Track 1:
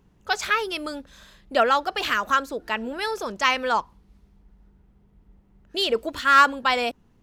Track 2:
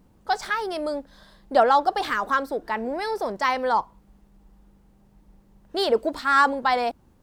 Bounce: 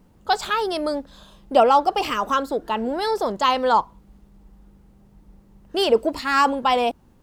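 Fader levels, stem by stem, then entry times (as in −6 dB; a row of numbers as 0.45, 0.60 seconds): −3.5, +2.0 decibels; 0.00, 0.00 seconds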